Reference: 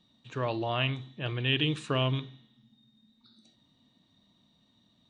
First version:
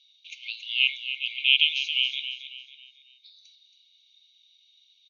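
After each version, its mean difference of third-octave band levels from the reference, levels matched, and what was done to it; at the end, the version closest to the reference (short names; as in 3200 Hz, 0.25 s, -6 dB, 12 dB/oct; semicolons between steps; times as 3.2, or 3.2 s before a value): 15.5 dB: bell 2900 Hz +2 dB 0.41 oct; FFT band-pass 2100–6700 Hz; feedback echo 0.275 s, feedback 38%, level -10 dB; gain +9 dB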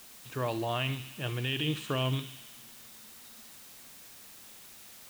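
10.5 dB: limiter -18.5 dBFS, peak gain reduction 6 dB; added noise white -51 dBFS; thin delay 71 ms, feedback 76%, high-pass 2100 Hz, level -11.5 dB; gain -1 dB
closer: second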